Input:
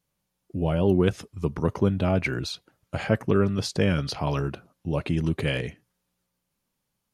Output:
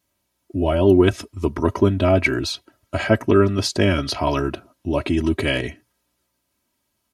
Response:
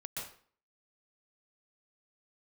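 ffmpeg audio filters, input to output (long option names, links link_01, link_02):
-af "highpass=57,aecho=1:1:3.1:0.77,volume=5.5dB"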